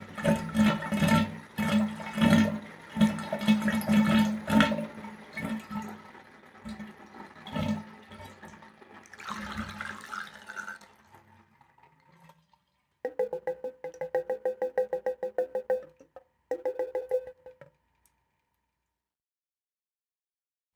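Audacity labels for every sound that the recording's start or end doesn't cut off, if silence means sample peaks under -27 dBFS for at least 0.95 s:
7.550000	7.750000	sound
9.290000	10.690000	sound
13.050000	17.180000	sound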